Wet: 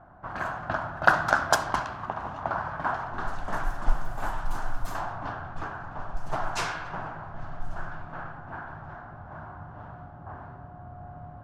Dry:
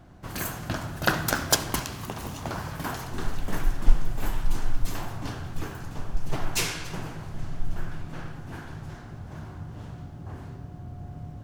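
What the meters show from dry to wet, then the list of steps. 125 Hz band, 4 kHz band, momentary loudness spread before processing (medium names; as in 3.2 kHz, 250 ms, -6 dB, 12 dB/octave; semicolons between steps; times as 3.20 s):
-6.0 dB, -7.0 dB, 14 LU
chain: level-controlled noise filter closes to 1.8 kHz, open at -16.5 dBFS; high-order bell 1 kHz +13 dB; trim -6 dB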